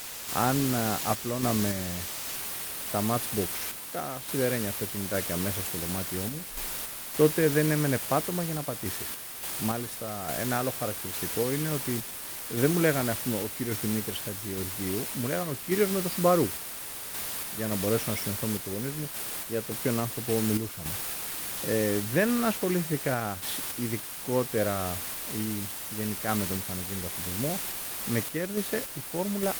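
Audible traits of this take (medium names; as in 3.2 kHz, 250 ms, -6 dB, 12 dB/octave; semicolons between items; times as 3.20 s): a quantiser's noise floor 6-bit, dither triangular; random-step tremolo; Opus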